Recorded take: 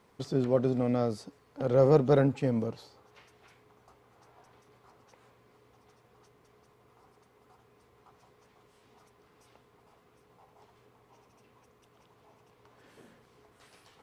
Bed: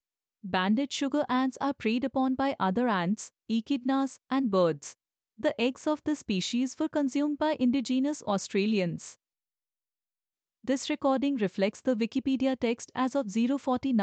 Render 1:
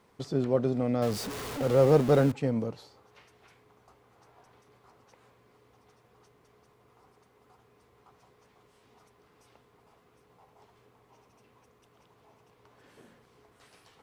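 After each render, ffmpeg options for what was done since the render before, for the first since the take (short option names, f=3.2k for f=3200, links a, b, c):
-filter_complex "[0:a]asettb=1/sr,asplit=3[a][b][c];[a]atrim=end=1.024[d];[b]atrim=start=1.02:end=2.32,asetpts=PTS-STARTPTS,afade=t=in:d=0.004:c=qsin,afade=t=out:st=1.296:d=0.004:c=qsin,aeval=exprs='val(0)+0.5*0.0251*sgn(val(0))':c=same[e];[c]atrim=start=2.316[f];[d][e]acrossfade=d=0.004:c1=hsin:c2=qsin[g];[g][f]acrossfade=d=0.004:c1=qsin:c2=hsin"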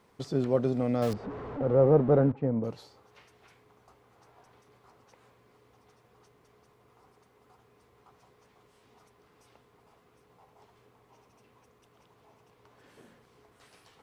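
-filter_complex "[0:a]asettb=1/sr,asplit=3[a][b][c];[a]atrim=end=1.134[d];[b]atrim=start=1.13:end=2.64,asetpts=PTS-STARTPTS,afade=t=in:d=0.004:c=qsin,afade=t=out:st=1.506:d=0.004:c=qsin,lowpass=1.1k[e];[c]atrim=start=2.636[f];[d][e]acrossfade=d=0.004:c1=hsin:c2=qsin[g];[g][f]acrossfade=d=0.004:c1=qsin:c2=hsin"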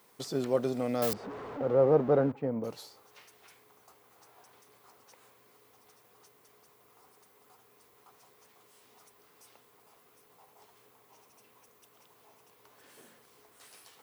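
-af "aemphasis=mode=production:type=bsi"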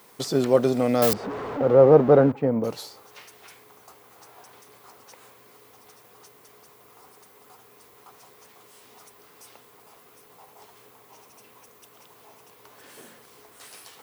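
-af "volume=9.5dB"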